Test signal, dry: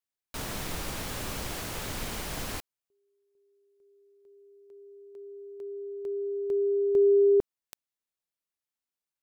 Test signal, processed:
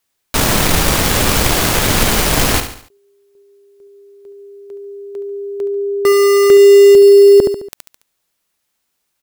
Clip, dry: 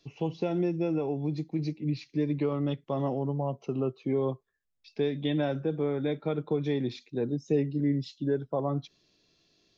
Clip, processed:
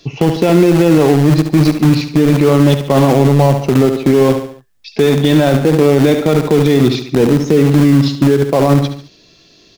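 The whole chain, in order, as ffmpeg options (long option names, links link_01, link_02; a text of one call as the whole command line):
ffmpeg -i in.wav -filter_complex "[0:a]asplit=2[link_01][link_02];[link_02]acrusher=bits=4:mix=0:aa=0.000001,volume=-8dB[link_03];[link_01][link_03]amix=inputs=2:normalize=0,aecho=1:1:71|142|213|284:0.266|0.117|0.0515|0.0227,alimiter=level_in=22dB:limit=-1dB:release=50:level=0:latency=1,volume=-1dB" out.wav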